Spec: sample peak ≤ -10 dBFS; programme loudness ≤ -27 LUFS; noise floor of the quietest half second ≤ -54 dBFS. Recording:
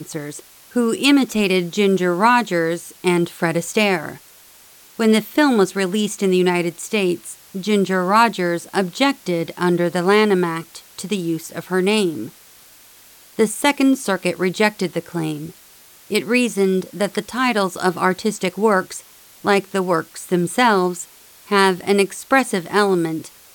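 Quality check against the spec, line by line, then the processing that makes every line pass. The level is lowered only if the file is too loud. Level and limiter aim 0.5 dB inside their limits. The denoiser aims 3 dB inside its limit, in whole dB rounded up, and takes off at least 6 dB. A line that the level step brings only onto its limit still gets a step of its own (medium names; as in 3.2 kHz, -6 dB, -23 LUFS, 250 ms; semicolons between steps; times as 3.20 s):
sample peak -2.0 dBFS: fail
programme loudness -19.0 LUFS: fail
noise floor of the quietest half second -47 dBFS: fail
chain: trim -8.5 dB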